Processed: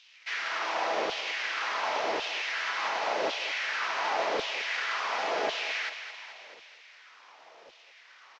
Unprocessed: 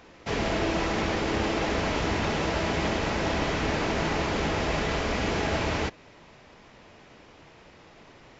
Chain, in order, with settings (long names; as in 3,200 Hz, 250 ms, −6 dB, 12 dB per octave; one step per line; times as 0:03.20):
variable-slope delta modulation 32 kbit/s
auto-filter high-pass saw down 0.91 Hz 480–3,300 Hz
on a send: feedback echo with a high-pass in the loop 217 ms, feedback 64%, high-pass 750 Hz, level −9 dB
on the sum: pitch-shifted copies added −5 semitones −15 dB
level −3.5 dB